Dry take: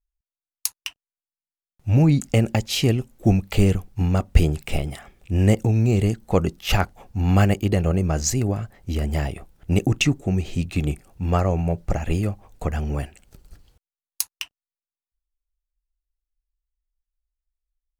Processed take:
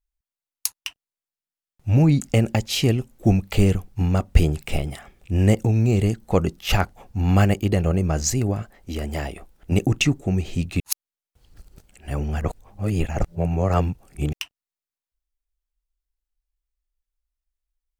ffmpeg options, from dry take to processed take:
-filter_complex "[0:a]asettb=1/sr,asplit=3[a][b][c];[a]atrim=end=8.624[d];[b]atrim=start=8.62:end=9.72,asetpts=PTS-STARTPTS,afade=t=in:d=0.004:c=qsin,afade=t=out:st=1.096:d=0.004:c=qsin,equalizer=f=110:w=1.5:g=-13[e];[c]atrim=start=9.716[f];[d][e]acrossfade=d=0.004:c1=hsin:c2=qsin[g];[g][f]acrossfade=d=0.004:c1=qsin:c2=hsin,asplit=3[h][i][j];[h]atrim=end=10.802[k];[i]atrim=start=10.798:end=14.332,asetpts=PTS-STARTPTS,areverse[l];[j]atrim=start=14.328[m];[k][l]acrossfade=d=0.004:c1=hsin:c2=hsin[n];[n][m]acrossfade=d=0.004:c1=hsin:c2=hsin"

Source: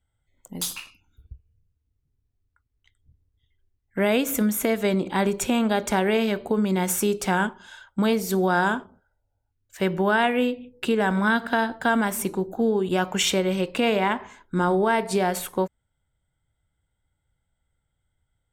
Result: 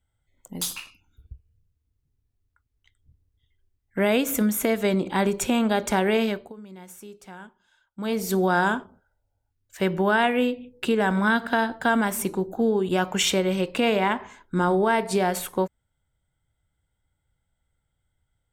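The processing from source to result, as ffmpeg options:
-filter_complex "[0:a]asplit=3[a][b][c];[a]atrim=end=6.53,asetpts=PTS-STARTPTS,afade=t=out:st=6.24:d=0.29:silence=0.1[d];[b]atrim=start=6.53:end=7.95,asetpts=PTS-STARTPTS,volume=-20dB[e];[c]atrim=start=7.95,asetpts=PTS-STARTPTS,afade=t=in:d=0.29:silence=0.1[f];[d][e][f]concat=n=3:v=0:a=1"

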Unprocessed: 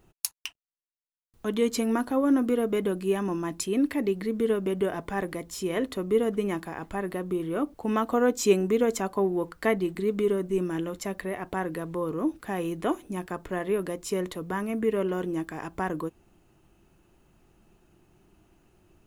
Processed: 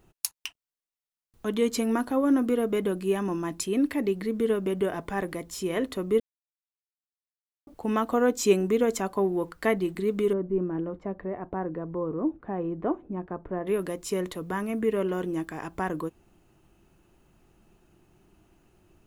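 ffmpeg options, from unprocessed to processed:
-filter_complex "[0:a]asettb=1/sr,asplit=3[a][b][c];[a]atrim=end=10.334[d];[b]atrim=start=10.33:end=13.67,asetpts=PTS-STARTPTS,afade=t=in:d=0.004:c=qsin,afade=t=out:st=3.336:d=0.004:c=qsin,lowpass=1k[e];[c]atrim=start=13.666[f];[d][e]acrossfade=d=0.004:c1=hsin:c2=qsin[g];[g][f]acrossfade=d=0.004:c1=qsin:c2=hsin,asplit=3[h][i][j];[h]atrim=end=6.2,asetpts=PTS-STARTPTS,afade=t=out:st=6.196:d=0.004:c=hsin[k];[i]atrim=start=6.2:end=7.67,asetpts=PTS-STARTPTS,volume=0[l];[j]atrim=start=7.67,asetpts=PTS-STARTPTS,afade=t=in:d=0.004:c=hsin[m];[k][l][m]concat=n=3:v=0:a=1"

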